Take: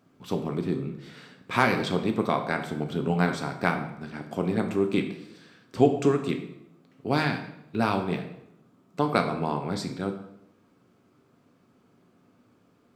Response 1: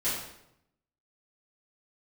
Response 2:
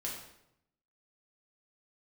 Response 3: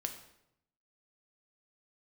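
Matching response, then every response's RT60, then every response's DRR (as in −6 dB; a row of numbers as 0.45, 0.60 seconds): 3; 0.80, 0.80, 0.80 seconds; −13.5, −4.5, 4.5 decibels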